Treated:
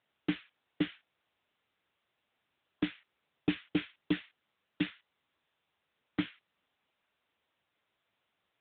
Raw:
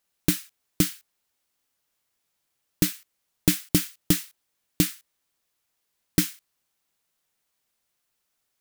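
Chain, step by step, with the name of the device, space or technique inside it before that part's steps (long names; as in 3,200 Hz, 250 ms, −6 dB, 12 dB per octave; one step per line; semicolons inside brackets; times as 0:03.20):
telephone (band-pass filter 260–3,500 Hz; soft clipping −18 dBFS, distortion −14 dB; AMR narrowband 10.2 kbit/s 8,000 Hz)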